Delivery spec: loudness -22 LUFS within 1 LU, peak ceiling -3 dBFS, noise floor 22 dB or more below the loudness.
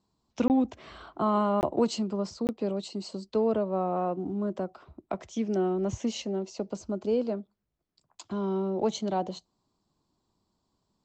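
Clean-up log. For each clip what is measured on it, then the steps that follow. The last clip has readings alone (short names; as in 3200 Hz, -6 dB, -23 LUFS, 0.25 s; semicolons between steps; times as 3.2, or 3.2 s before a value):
dropouts 3; longest dropout 19 ms; loudness -30.0 LUFS; peak -14.0 dBFS; loudness target -22.0 LUFS
-> interpolate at 0.48/1.61/2.47, 19 ms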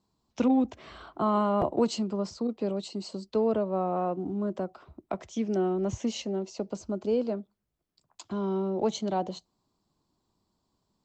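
dropouts 0; loudness -30.0 LUFS; peak -14.0 dBFS; loudness target -22.0 LUFS
-> gain +8 dB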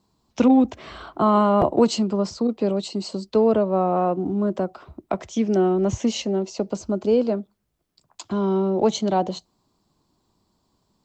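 loudness -22.0 LUFS; peak -6.0 dBFS; noise floor -72 dBFS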